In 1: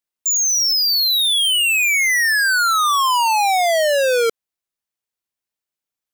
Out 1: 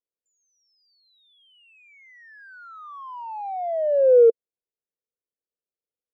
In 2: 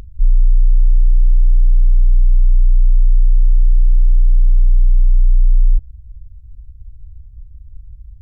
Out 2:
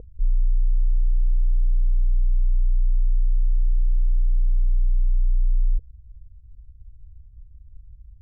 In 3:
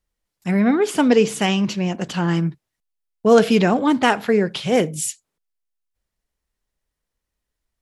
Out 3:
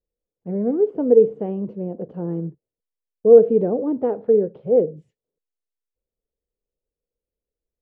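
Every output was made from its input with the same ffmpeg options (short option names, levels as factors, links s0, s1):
-af "lowpass=f=480:t=q:w=4.9,volume=0.355"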